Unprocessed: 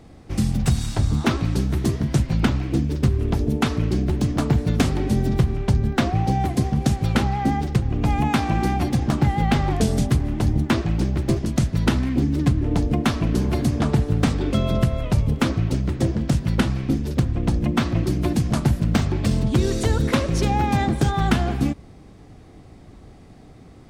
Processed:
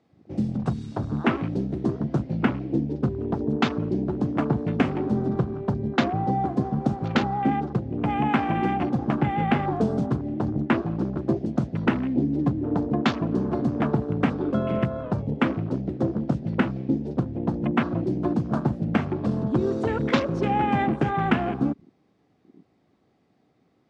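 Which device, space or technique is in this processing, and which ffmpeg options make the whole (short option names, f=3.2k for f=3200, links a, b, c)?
over-cleaned archive recording: -af "highpass=180,lowpass=5.2k,afwtdn=0.02"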